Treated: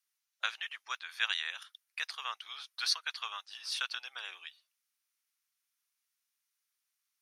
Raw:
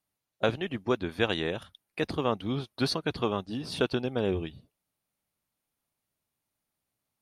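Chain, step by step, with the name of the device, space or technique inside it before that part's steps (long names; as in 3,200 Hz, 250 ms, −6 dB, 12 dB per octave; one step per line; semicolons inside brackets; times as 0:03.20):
headphones lying on a table (high-pass filter 1,300 Hz 24 dB per octave; parametric band 5,800 Hz +6.5 dB 0.45 octaves)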